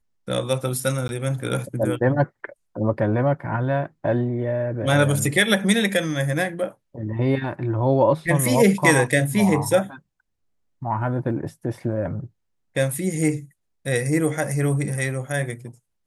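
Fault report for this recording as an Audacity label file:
1.080000	1.090000	gap 11 ms

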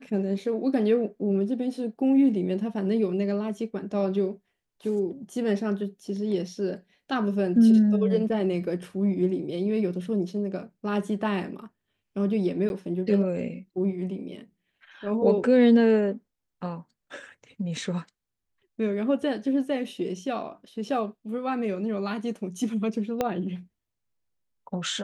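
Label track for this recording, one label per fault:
12.690000	12.700000	gap
23.210000	23.210000	pop -12 dBFS

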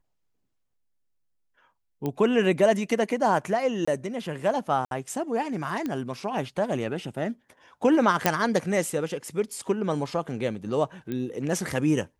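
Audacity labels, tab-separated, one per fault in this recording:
2.060000	2.060000	pop -17 dBFS
3.850000	3.880000	gap 25 ms
4.850000	4.910000	gap 62 ms
5.860000	5.860000	pop -18 dBFS
8.260000	8.260000	pop -4 dBFS
11.120000	11.120000	pop -20 dBFS

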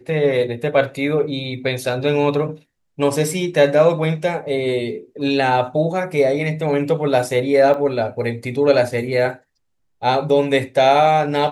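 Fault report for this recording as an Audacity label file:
7.740000	7.740000	gap 2.6 ms

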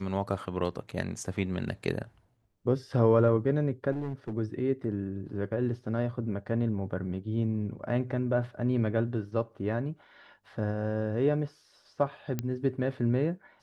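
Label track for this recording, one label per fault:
3.910000	4.330000	clipped -29.5 dBFS
12.390000	12.390000	pop -17 dBFS

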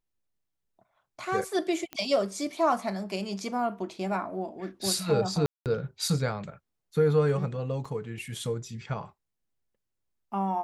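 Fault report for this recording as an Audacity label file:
1.930000	1.930000	pop -20 dBFS
5.460000	5.660000	gap 0.198 s
7.850000	7.850000	gap 4.1 ms

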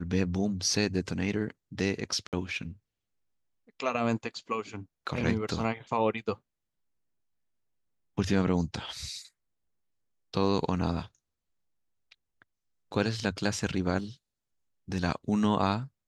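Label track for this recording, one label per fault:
2.270000	2.330000	gap 58 ms

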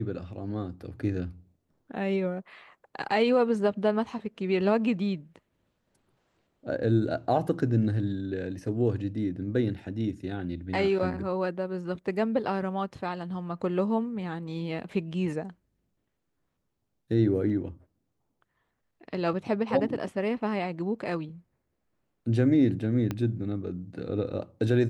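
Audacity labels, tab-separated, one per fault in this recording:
23.110000	23.110000	pop -17 dBFS

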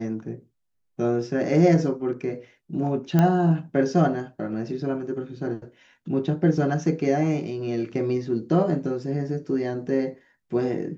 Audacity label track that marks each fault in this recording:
3.190000	3.190000	pop -9 dBFS

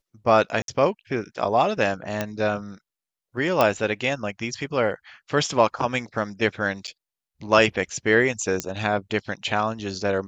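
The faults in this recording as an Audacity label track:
0.620000	0.680000	gap 62 ms
2.210000	2.210000	pop -10 dBFS
3.610000	3.610000	pop -6 dBFS
6.870000	6.880000	gap 8.2 ms
8.600000	8.600000	pop -8 dBFS

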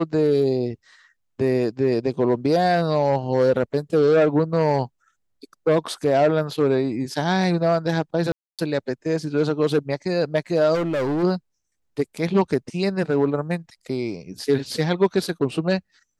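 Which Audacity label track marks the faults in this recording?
8.320000	8.590000	gap 0.267 s
10.740000	11.240000	clipped -20.5 dBFS

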